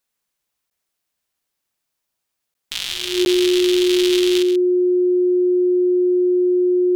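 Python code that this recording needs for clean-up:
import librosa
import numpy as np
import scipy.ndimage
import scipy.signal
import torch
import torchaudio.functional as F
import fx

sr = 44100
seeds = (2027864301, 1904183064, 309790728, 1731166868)

y = fx.notch(x, sr, hz=360.0, q=30.0)
y = fx.fix_interpolate(y, sr, at_s=(0.7, 2.54, 3.25), length_ms=11.0)
y = fx.fix_echo_inverse(y, sr, delay_ms=132, level_db=-10.0)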